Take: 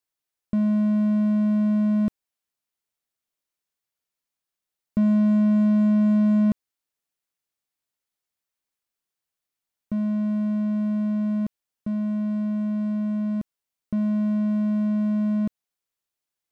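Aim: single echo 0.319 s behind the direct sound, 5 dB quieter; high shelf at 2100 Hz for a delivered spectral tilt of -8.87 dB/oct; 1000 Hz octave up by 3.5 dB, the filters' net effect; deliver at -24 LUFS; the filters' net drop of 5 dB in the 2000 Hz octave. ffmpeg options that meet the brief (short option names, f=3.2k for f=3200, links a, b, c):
-af "equalizer=f=1k:t=o:g=7,equalizer=f=2k:t=o:g=-8.5,highshelf=f=2.1k:g=-6.5,aecho=1:1:319:0.562,volume=-0.5dB"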